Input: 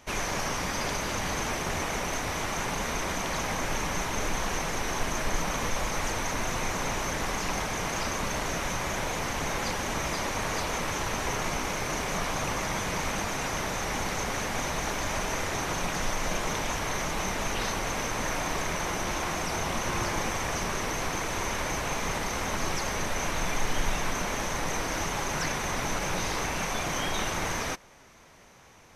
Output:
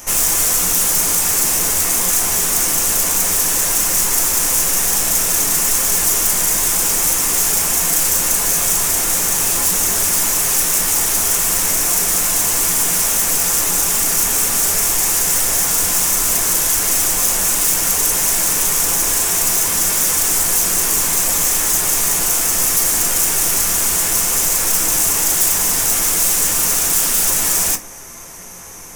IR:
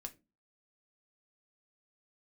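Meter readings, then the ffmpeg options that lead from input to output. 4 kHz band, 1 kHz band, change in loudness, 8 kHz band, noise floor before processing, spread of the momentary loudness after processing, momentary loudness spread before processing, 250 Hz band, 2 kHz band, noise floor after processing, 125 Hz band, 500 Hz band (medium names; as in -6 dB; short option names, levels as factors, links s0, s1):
+12.5 dB, +4.0 dB, +17.0 dB, +22.0 dB, -32 dBFS, 1 LU, 1 LU, +4.5 dB, +6.0 dB, -18 dBFS, +2.5 dB, +4.0 dB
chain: -filter_complex "[0:a]aeval=exprs='0.2*sin(PI/2*7.94*val(0)/0.2)':c=same,aexciter=amount=5.6:drive=7.2:freq=5900[s0];[1:a]atrim=start_sample=2205[s1];[s0][s1]afir=irnorm=-1:irlink=0,volume=0.631"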